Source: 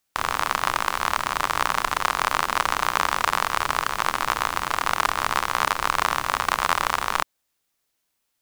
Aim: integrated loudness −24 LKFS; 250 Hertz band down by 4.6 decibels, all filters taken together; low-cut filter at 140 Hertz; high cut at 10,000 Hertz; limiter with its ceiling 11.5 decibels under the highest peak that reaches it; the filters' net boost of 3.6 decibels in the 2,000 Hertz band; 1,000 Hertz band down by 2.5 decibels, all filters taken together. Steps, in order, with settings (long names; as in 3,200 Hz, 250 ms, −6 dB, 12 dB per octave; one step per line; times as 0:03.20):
high-pass filter 140 Hz
low-pass filter 10,000 Hz
parametric band 250 Hz −5.5 dB
parametric band 1,000 Hz −5 dB
parametric band 2,000 Hz +6.5 dB
level +6.5 dB
brickwall limiter −6.5 dBFS